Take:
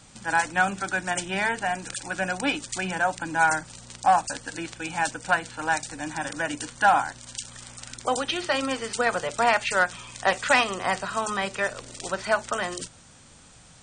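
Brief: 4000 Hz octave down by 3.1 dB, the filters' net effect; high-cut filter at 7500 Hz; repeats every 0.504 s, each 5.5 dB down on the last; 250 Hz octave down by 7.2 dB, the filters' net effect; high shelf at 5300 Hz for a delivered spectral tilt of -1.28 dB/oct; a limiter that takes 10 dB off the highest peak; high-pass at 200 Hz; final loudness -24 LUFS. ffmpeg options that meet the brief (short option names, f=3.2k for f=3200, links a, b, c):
-af "highpass=200,lowpass=7.5k,equalizer=f=250:t=o:g=-7.5,equalizer=f=4k:t=o:g=-7.5,highshelf=f=5.3k:g=8,alimiter=limit=-16dB:level=0:latency=1,aecho=1:1:504|1008|1512|2016|2520|3024|3528:0.531|0.281|0.149|0.079|0.0419|0.0222|0.0118,volume=4.5dB"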